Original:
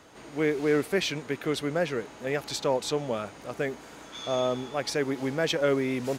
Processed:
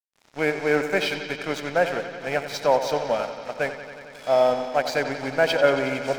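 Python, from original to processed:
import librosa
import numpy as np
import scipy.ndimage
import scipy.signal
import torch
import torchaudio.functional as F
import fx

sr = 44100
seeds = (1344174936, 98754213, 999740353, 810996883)

p1 = fx.freq_compress(x, sr, knee_hz=3300.0, ratio=1.5)
p2 = fx.highpass(p1, sr, hz=390.0, slope=6)
p3 = fx.peak_eq(p2, sr, hz=3500.0, db=-5.5, octaves=0.42)
p4 = p3 + 0.48 * np.pad(p3, (int(1.3 * sr / 1000.0), 0))[:len(p3)]
p5 = np.sign(p4) * np.maximum(np.abs(p4) - 10.0 ** (-43.0 / 20.0), 0.0)
p6 = p5 + fx.echo_bbd(p5, sr, ms=91, stages=4096, feedback_pct=82, wet_db=-11, dry=0)
p7 = fx.dynamic_eq(p6, sr, hz=610.0, q=0.87, threshold_db=-36.0, ratio=4.0, max_db=4)
y = p7 * 10.0 ** (6.0 / 20.0)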